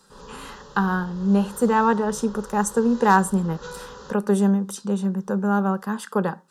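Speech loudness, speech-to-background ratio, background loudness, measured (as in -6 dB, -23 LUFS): -22.5 LUFS, 20.0 dB, -42.5 LUFS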